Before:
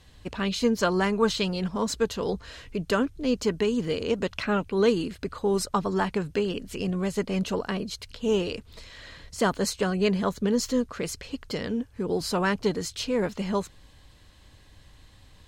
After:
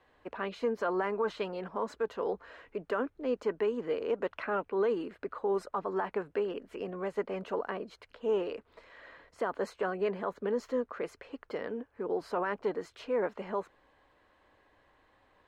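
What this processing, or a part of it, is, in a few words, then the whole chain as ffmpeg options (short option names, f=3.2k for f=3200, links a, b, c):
DJ mixer with the lows and highs turned down: -filter_complex "[0:a]acrossover=split=330 2000:gain=0.0794 1 0.0631[a][b][c];[a][b][c]amix=inputs=3:normalize=0,alimiter=limit=-21dB:level=0:latency=1:release=27,volume=-1dB"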